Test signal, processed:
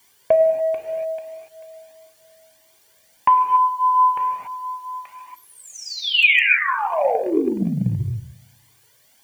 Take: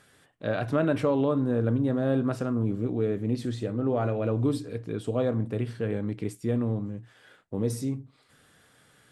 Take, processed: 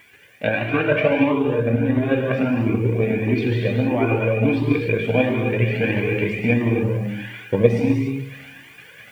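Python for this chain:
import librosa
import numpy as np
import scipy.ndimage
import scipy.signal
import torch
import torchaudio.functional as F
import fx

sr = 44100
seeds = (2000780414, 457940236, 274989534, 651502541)

p1 = fx.level_steps(x, sr, step_db=12)
p2 = x + F.gain(torch.from_numpy(p1), 0.5).numpy()
p3 = fx.rev_gated(p2, sr, seeds[0], gate_ms=310, shape='flat', drr_db=-1.0)
p4 = fx.transient(p3, sr, attack_db=8, sustain_db=4)
p5 = fx.lowpass_res(p4, sr, hz=2500.0, q=14.0)
p6 = p5 + fx.echo_filtered(p5, sr, ms=103, feedback_pct=54, hz=1100.0, wet_db=-18.0, dry=0)
p7 = fx.quant_dither(p6, sr, seeds[1], bits=10, dither='triangular')
p8 = fx.rider(p7, sr, range_db=4, speed_s=0.5)
p9 = fx.notch_comb(p8, sr, f0_hz=1300.0)
p10 = fx.comb_cascade(p9, sr, direction='rising', hz=1.5)
y = F.gain(torch.from_numpy(p10), 4.5).numpy()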